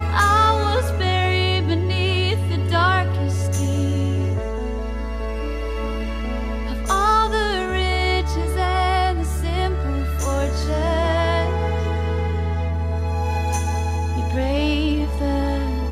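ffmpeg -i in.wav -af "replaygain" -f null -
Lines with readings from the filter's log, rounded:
track_gain = +3.3 dB
track_peak = 0.373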